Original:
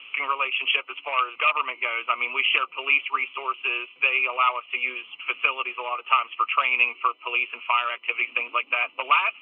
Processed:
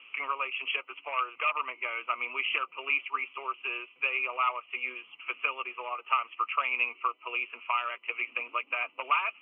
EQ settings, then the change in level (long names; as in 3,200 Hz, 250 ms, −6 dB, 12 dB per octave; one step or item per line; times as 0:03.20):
low-pass filter 2,800 Hz 24 dB per octave
−6.5 dB